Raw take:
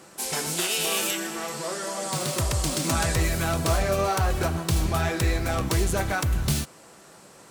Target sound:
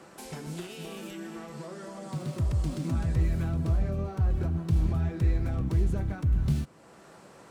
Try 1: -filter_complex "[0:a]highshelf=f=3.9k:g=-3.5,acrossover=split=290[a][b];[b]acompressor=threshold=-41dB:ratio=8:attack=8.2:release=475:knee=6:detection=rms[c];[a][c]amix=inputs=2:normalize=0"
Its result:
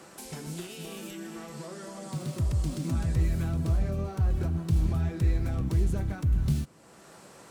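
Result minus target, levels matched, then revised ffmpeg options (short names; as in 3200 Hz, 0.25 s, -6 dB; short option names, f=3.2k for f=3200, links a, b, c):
8000 Hz band +4.5 dB
-filter_complex "[0:a]highshelf=f=3.9k:g=-12,acrossover=split=290[a][b];[b]acompressor=threshold=-41dB:ratio=8:attack=8.2:release=475:knee=6:detection=rms[c];[a][c]amix=inputs=2:normalize=0"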